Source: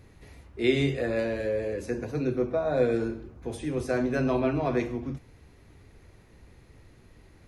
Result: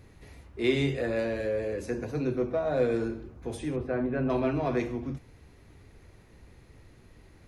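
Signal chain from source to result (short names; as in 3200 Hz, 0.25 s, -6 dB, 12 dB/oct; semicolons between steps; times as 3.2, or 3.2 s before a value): in parallel at -8 dB: soft clip -29 dBFS, distortion -8 dB; 3.76–4.3 on the sum: air absorption 490 m; gain -3 dB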